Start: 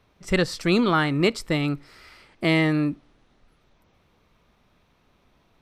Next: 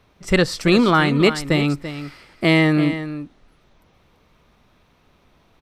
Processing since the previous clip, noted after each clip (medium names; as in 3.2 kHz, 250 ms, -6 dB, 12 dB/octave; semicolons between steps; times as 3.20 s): delay 337 ms -11.5 dB; trim +5 dB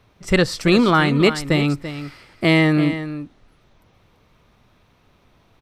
peaking EQ 110 Hz +7 dB 0.32 oct